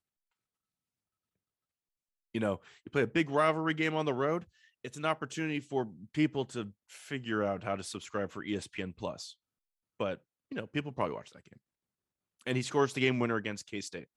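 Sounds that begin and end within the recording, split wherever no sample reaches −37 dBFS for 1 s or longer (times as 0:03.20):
0:02.35–0:11.21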